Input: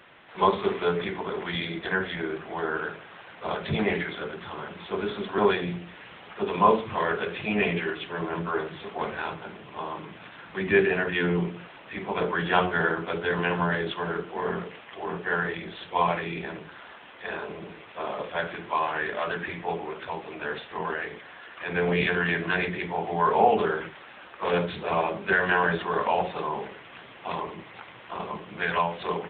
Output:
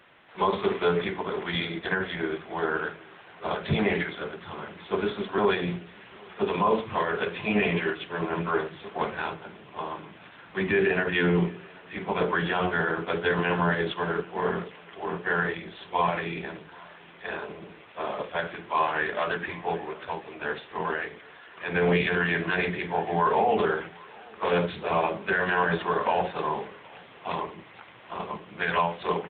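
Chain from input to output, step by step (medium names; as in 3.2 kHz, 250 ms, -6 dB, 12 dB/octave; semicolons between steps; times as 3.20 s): peak limiter -18 dBFS, peak gain reduction 10 dB; on a send: delay 776 ms -19 dB; on the sum: upward expansion 1.5:1, over -40 dBFS; trim +4.5 dB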